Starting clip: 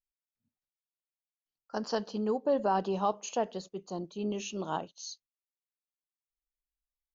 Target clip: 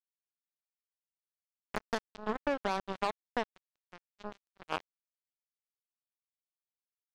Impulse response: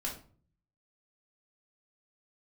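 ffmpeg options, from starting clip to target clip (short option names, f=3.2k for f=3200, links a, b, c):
-af "acrusher=bits=3:mix=0:aa=0.5,acompressor=threshold=-29dB:ratio=6,volume=1.5dB"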